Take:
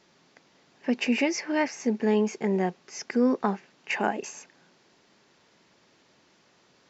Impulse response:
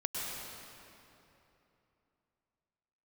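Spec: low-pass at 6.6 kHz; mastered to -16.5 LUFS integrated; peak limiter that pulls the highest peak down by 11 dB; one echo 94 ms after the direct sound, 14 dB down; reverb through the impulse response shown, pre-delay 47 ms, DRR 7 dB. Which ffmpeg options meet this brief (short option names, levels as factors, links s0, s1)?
-filter_complex "[0:a]lowpass=6600,alimiter=limit=0.0841:level=0:latency=1,aecho=1:1:94:0.2,asplit=2[s0][s1];[1:a]atrim=start_sample=2205,adelay=47[s2];[s1][s2]afir=irnorm=-1:irlink=0,volume=0.266[s3];[s0][s3]amix=inputs=2:normalize=0,volume=5.62"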